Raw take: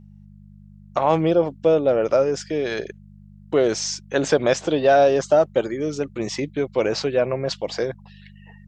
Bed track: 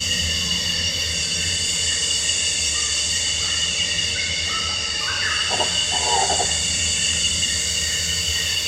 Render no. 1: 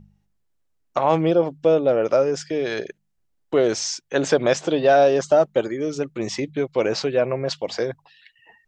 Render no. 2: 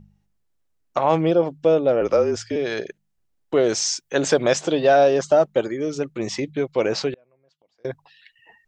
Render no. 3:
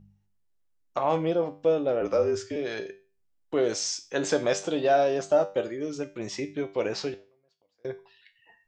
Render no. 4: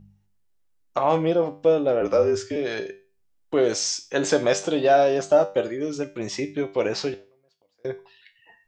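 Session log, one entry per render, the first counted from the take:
de-hum 50 Hz, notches 4
2.01–2.56 frequency shift -38 Hz; 3.67–4.89 high shelf 7400 Hz +9.5 dB; 7.13–7.85 flipped gate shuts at -23 dBFS, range -38 dB
resonator 98 Hz, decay 0.35 s, harmonics all, mix 70%
gain +4.5 dB

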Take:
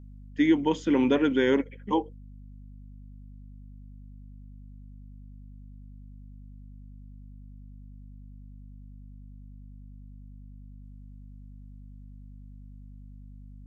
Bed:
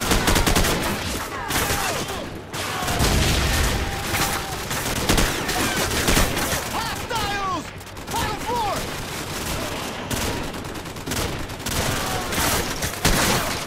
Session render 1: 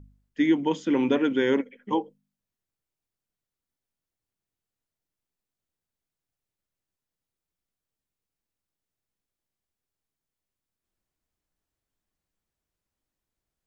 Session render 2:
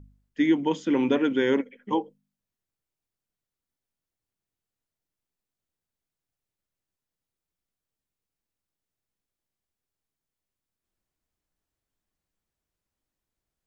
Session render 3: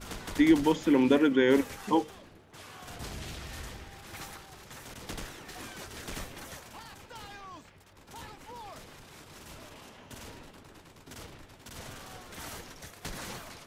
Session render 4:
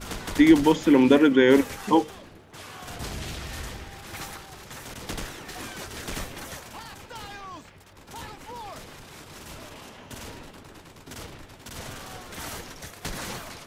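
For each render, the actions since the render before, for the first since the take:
de-hum 50 Hz, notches 5
nothing audible
add bed -21.5 dB
gain +6 dB

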